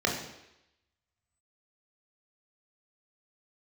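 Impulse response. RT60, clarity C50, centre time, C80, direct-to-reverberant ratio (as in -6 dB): 0.85 s, 5.5 dB, 35 ms, 8.0 dB, -1.0 dB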